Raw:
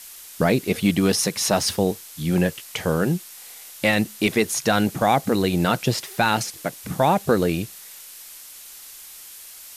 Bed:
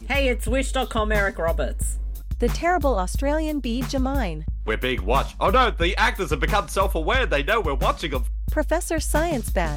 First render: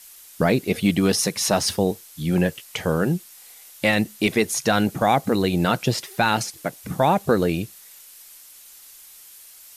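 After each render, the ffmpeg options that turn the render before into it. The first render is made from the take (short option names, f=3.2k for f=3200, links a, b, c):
-af "afftdn=nr=6:nf=-42"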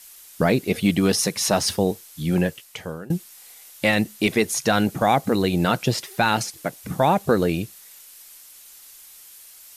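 -filter_complex "[0:a]asplit=2[a][b];[a]atrim=end=3.1,asetpts=PTS-STARTPTS,afade=t=out:st=2.33:d=0.77:silence=0.0794328[c];[b]atrim=start=3.1,asetpts=PTS-STARTPTS,afade=t=in:d=0.004:c=hsin:silence=0.0794328[d];[c][d]concat=n=2:v=0:a=1"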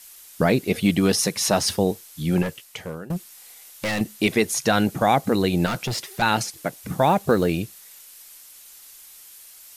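-filter_complex "[0:a]asettb=1/sr,asplit=3[a][b][c];[a]atrim=end=2.424[d];[b]atrim=start=2.42:end=4.01,asetpts=PTS-STARTPTS,afade=t=in:d=0.004:c=qsin,afade=t=out:st=1.586:d=0.004:c=qsin,asoftclip=type=hard:threshold=-22.5dB[e];[c]atrim=start=4.006[f];[d][e]acrossfade=d=0.004:c1=hsin:c2=qsin[g];[g][f]acrossfade=d=0.004:c1=qsin:c2=hsin,asettb=1/sr,asplit=3[h][i][j];[h]atrim=end=5.664[k];[i]atrim=start=5.66:end=6.22,asetpts=PTS-STARTPTS,afade=t=in:d=0.004:c=qsin,afade=t=out:st=0.556:d=0.004:c=qsin,volume=22.5dB,asoftclip=hard,volume=-22.5dB[l];[j]atrim=start=6.216[m];[k][l]acrossfade=d=0.004:c1=hsin:c2=qsin[n];[n][m]acrossfade=d=0.004:c1=qsin:c2=hsin,asettb=1/sr,asplit=3[o][p][q];[o]atrim=end=6.884[r];[p]atrim=start=6.88:end=7.58,asetpts=PTS-STARTPTS,afade=t=in:d=0.004:c=qsin,afade=t=out:st=0.696:d=0.004:c=qsin,acrusher=bits=9:mode=log:mix=0:aa=0.000001[s];[q]atrim=start=7.576[t];[r][s]acrossfade=d=0.004:c1=hsin:c2=qsin[u];[u][t]acrossfade=d=0.004:c1=qsin:c2=hsin"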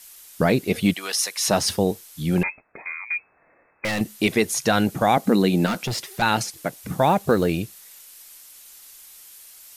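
-filter_complex "[0:a]asplit=3[a][b][c];[a]afade=t=out:st=0.92:d=0.02[d];[b]highpass=1k,afade=t=in:st=0.92:d=0.02,afade=t=out:st=1.46:d=0.02[e];[c]afade=t=in:st=1.46:d=0.02[f];[d][e][f]amix=inputs=3:normalize=0,asettb=1/sr,asplit=3[g][h][i];[g]atrim=end=2.434[j];[h]atrim=start=2.43:end=3.85,asetpts=PTS-STARTPTS,afade=t=in:d=0.004:c=qsin,afade=t=out:st=1.416:d=0.004:c=qsin,lowpass=f=2.2k:t=q:w=0.5098,lowpass=f=2.2k:t=q:w=0.6013,lowpass=f=2.2k:t=q:w=0.9,lowpass=f=2.2k:t=q:w=2.563,afreqshift=-2600[k];[i]atrim=start=3.846[l];[j][k]acrossfade=d=0.004:c1=hsin:c2=qsin[m];[m][l]acrossfade=d=0.004:c1=qsin:c2=hsin,asettb=1/sr,asplit=3[n][o][p];[n]atrim=end=5.174[q];[o]atrim=start=5.17:end=5.84,asetpts=PTS-STARTPTS,afade=t=in:d=0.004:c=qsin,afade=t=out:st=0.666:d=0.004:c=qsin,lowshelf=f=160:t=q:w=3:g=-7[r];[p]atrim=start=5.836[s];[q][r]acrossfade=d=0.004:c1=hsin:c2=qsin[t];[t][s]acrossfade=d=0.004:c1=qsin:c2=hsin"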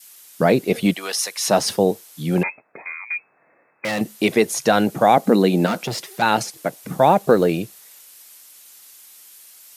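-af "highpass=f=120:w=0.5412,highpass=f=120:w=1.3066,adynamicequalizer=threshold=0.0282:dfrequency=570:dqfactor=0.77:tfrequency=570:tqfactor=0.77:attack=5:release=100:ratio=0.375:range=3:mode=boostabove:tftype=bell"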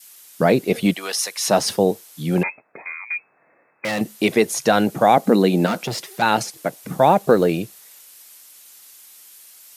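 -af anull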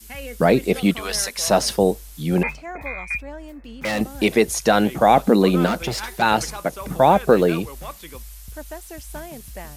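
-filter_complex "[1:a]volume=-13.5dB[a];[0:a][a]amix=inputs=2:normalize=0"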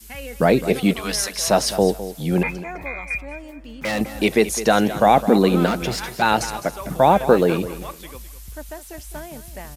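-af "aecho=1:1:208|416|624:0.211|0.0507|0.0122"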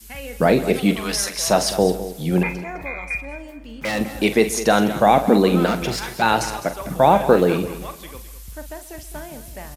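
-filter_complex "[0:a]asplit=2[a][b];[b]adelay=44,volume=-11dB[c];[a][c]amix=inputs=2:normalize=0,asplit=2[d][e];[e]adelay=134.1,volume=-18dB,highshelf=f=4k:g=-3.02[f];[d][f]amix=inputs=2:normalize=0"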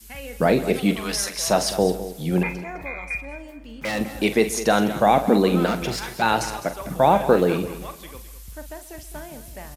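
-af "volume=-2.5dB"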